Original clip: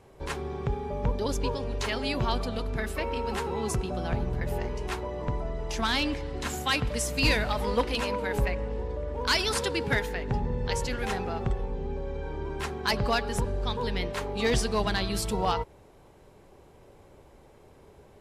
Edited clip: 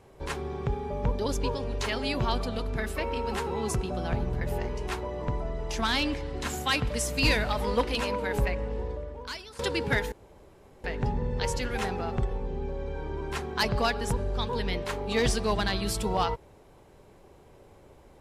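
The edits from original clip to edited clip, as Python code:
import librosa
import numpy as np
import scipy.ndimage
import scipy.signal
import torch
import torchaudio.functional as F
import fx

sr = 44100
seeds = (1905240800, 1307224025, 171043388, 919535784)

y = fx.edit(x, sr, fx.fade_out_to(start_s=8.88, length_s=0.71, curve='qua', floor_db=-20.5),
    fx.insert_room_tone(at_s=10.12, length_s=0.72), tone=tone)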